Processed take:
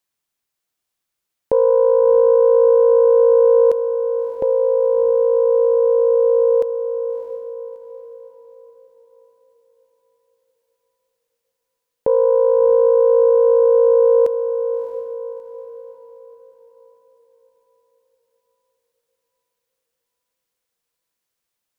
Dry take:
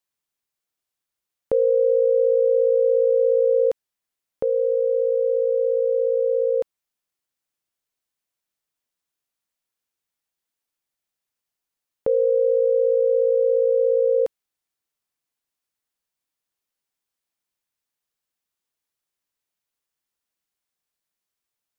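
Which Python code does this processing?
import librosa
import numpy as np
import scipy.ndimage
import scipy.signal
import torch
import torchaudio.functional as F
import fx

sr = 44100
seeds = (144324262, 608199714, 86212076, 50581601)

y = fx.self_delay(x, sr, depth_ms=0.099)
y = fx.echo_diffused(y, sr, ms=654, feedback_pct=43, wet_db=-8.5)
y = F.gain(torch.from_numpy(y), 4.5).numpy()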